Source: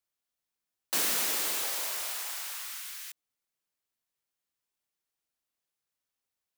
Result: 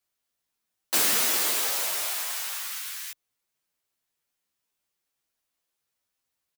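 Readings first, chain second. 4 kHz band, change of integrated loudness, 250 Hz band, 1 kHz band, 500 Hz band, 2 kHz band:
+5.5 dB, +5.5 dB, +5.5 dB, +5.5 dB, +5.5 dB, +5.5 dB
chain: barber-pole flanger 10.5 ms +1.7 Hz
level +8.5 dB

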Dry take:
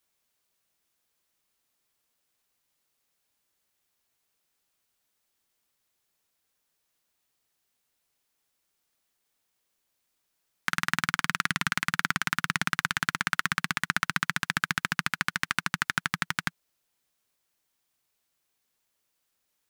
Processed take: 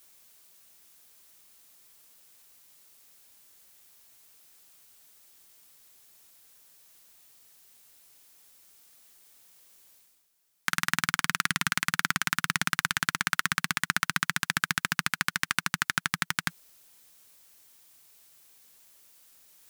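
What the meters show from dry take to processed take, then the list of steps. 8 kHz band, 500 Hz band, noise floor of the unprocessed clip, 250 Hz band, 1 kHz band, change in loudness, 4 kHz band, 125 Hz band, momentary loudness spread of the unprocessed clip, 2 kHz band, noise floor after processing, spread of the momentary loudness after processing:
+4.5 dB, −1.0 dB, −78 dBFS, −1.0 dB, −0.5 dB, +0.5 dB, +1.5 dB, −1.0 dB, 3 LU, 0.0 dB, −72 dBFS, 3 LU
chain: high-shelf EQ 5,100 Hz +8 dB
reversed playback
upward compression, threshold −43 dBFS
reversed playback
level −1 dB

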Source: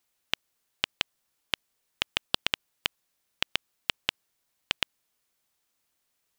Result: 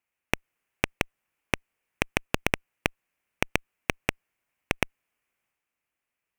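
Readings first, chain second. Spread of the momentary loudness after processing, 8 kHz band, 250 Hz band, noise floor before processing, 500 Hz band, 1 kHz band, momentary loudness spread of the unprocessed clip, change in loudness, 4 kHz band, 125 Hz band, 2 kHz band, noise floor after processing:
5 LU, +4.5 dB, +14.0 dB, −78 dBFS, +11.5 dB, +6.0 dB, 5 LU, +1.5 dB, −7.5 dB, +14.5 dB, +4.5 dB, below −85 dBFS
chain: harmonic generator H 3 −9 dB, 6 −12 dB, 7 −27 dB, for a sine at −3 dBFS
high shelf with overshoot 3,100 Hz −7 dB, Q 3
transient designer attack 0 dB, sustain +5 dB
level +2.5 dB

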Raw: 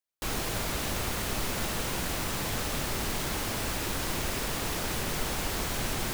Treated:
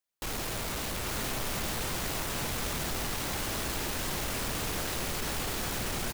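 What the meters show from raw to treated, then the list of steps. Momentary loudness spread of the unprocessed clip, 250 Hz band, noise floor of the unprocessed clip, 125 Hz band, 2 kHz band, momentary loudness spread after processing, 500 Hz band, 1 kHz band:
0 LU, −2.5 dB, −33 dBFS, −2.5 dB, −1.5 dB, 1 LU, −2.0 dB, −2.0 dB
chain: hard clipping −34.5 dBFS, distortion −7 dB
single-tap delay 845 ms −4 dB
level +2 dB

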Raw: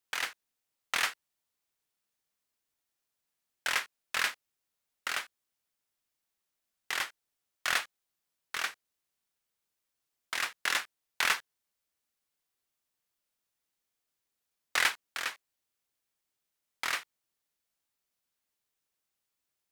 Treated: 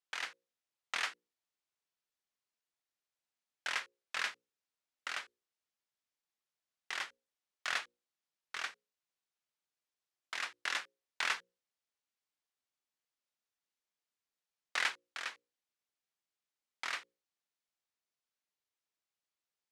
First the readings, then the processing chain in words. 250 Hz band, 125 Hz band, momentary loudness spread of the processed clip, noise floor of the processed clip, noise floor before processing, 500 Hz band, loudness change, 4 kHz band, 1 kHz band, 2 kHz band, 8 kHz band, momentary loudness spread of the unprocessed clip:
−8.5 dB, can't be measured, 10 LU, below −85 dBFS, −85 dBFS, −7.0 dB, −6.5 dB, −6.5 dB, −6.0 dB, −6.0 dB, −9.5 dB, 9 LU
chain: low-pass filter 7,000 Hz 12 dB per octave
low-shelf EQ 130 Hz −10 dB
mains-hum notches 60/120/180/240/300/360/420/480/540 Hz
level −6 dB

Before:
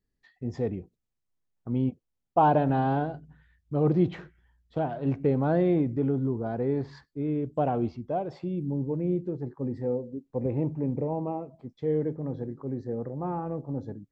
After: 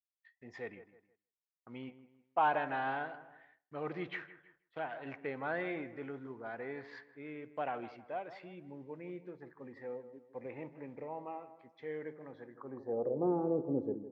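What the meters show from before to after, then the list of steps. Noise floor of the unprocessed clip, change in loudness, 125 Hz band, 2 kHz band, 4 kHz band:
−81 dBFS, −10.5 dB, −21.0 dB, +2.5 dB, can't be measured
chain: delay with a low-pass on its return 159 ms, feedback 36%, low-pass 2,000 Hz, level −13.5 dB
downward expander −51 dBFS
band-pass filter sweep 2,000 Hz → 390 Hz, 0:12.47–0:13.24
level +6 dB

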